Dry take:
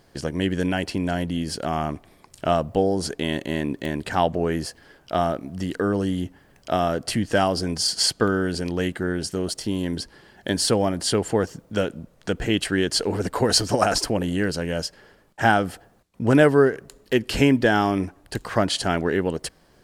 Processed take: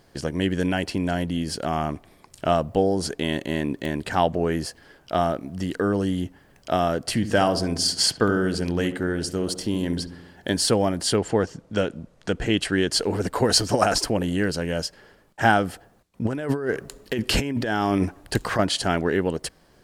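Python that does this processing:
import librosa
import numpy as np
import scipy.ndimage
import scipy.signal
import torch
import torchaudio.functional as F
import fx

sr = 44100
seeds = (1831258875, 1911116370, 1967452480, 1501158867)

y = fx.echo_filtered(x, sr, ms=69, feedback_pct=62, hz=1200.0, wet_db=-10, at=(7.06, 10.55))
y = fx.lowpass(y, sr, hz=fx.line((11.16, 6900.0), (12.9, 11000.0)), slope=12, at=(11.16, 12.9), fade=0.02)
y = fx.over_compress(y, sr, threshold_db=-24.0, ratio=-1.0, at=(16.25, 18.59))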